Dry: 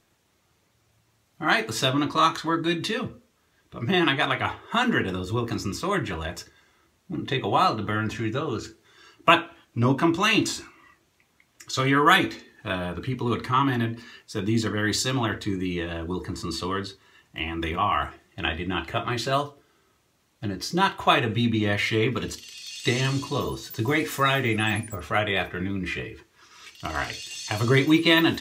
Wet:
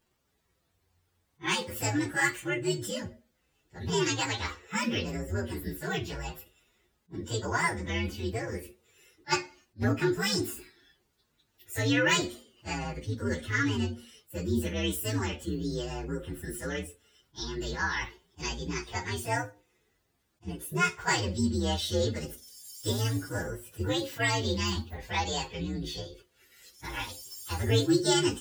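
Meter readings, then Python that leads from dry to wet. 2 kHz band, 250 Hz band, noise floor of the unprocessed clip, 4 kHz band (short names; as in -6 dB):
-6.5 dB, -6.5 dB, -67 dBFS, -6.0 dB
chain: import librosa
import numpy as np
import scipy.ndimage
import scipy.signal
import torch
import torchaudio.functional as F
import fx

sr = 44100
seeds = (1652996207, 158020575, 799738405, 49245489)

y = fx.partial_stretch(x, sr, pct=127)
y = fx.attack_slew(y, sr, db_per_s=430.0)
y = y * librosa.db_to_amplitude(-3.0)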